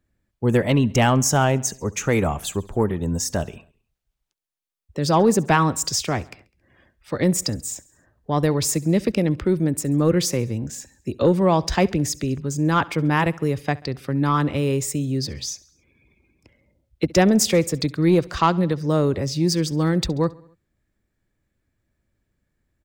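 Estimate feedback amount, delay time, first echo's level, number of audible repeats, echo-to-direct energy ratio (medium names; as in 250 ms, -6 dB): 57%, 68 ms, -22.5 dB, 3, -21.0 dB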